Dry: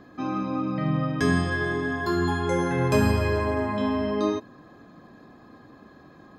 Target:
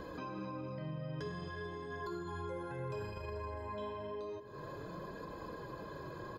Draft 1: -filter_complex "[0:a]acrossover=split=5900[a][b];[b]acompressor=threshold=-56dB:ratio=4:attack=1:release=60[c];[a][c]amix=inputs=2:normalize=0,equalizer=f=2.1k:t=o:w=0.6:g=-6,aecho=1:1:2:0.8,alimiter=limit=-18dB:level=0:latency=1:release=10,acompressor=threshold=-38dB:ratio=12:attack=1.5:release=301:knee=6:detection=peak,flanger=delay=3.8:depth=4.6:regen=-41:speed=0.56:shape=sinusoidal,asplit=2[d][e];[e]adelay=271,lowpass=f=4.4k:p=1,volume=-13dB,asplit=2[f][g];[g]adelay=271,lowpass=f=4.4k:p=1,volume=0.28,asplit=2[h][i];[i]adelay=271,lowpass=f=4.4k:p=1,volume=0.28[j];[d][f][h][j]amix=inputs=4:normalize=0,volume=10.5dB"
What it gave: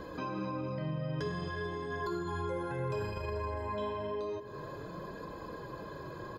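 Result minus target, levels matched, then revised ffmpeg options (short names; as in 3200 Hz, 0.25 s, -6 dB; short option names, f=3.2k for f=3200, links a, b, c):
compressor: peak gain reduction -6 dB
-filter_complex "[0:a]acrossover=split=5900[a][b];[b]acompressor=threshold=-56dB:ratio=4:attack=1:release=60[c];[a][c]amix=inputs=2:normalize=0,equalizer=f=2.1k:t=o:w=0.6:g=-6,aecho=1:1:2:0.8,alimiter=limit=-18dB:level=0:latency=1:release=10,acompressor=threshold=-44.5dB:ratio=12:attack=1.5:release=301:knee=6:detection=peak,flanger=delay=3.8:depth=4.6:regen=-41:speed=0.56:shape=sinusoidal,asplit=2[d][e];[e]adelay=271,lowpass=f=4.4k:p=1,volume=-13dB,asplit=2[f][g];[g]adelay=271,lowpass=f=4.4k:p=1,volume=0.28,asplit=2[h][i];[i]adelay=271,lowpass=f=4.4k:p=1,volume=0.28[j];[d][f][h][j]amix=inputs=4:normalize=0,volume=10.5dB"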